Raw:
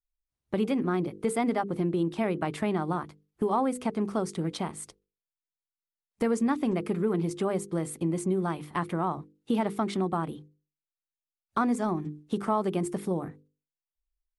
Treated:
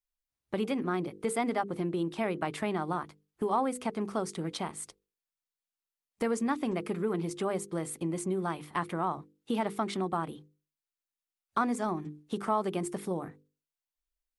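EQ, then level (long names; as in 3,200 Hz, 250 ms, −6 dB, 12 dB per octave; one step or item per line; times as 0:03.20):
low-shelf EQ 420 Hz −6.5 dB
0.0 dB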